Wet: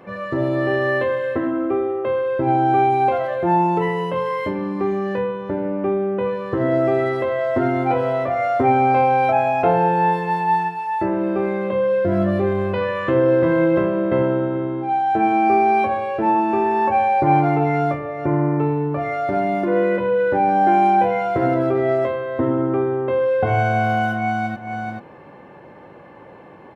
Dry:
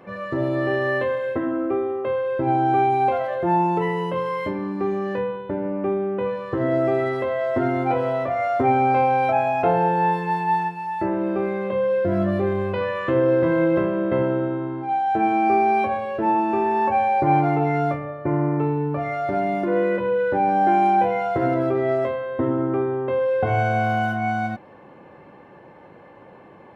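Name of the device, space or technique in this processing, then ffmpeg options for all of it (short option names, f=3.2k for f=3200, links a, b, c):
ducked delay: -filter_complex "[0:a]asplit=3[a][b][c];[b]adelay=434,volume=-5.5dB[d];[c]apad=whole_len=1199114[e];[d][e]sidechaincompress=threshold=-36dB:ratio=8:attack=16:release=222[f];[a][f]amix=inputs=2:normalize=0,volume=2.5dB"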